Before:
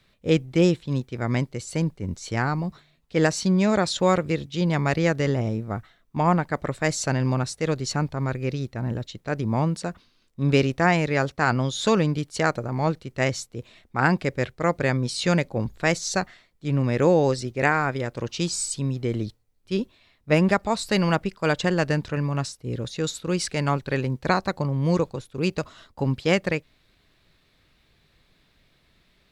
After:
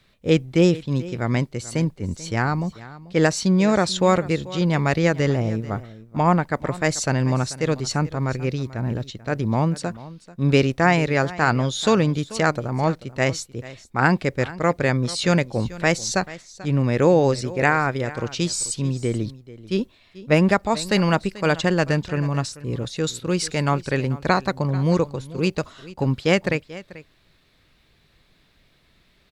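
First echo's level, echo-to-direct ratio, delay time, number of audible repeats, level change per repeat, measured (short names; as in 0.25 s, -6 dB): -18.0 dB, -18.0 dB, 0.438 s, 1, no steady repeat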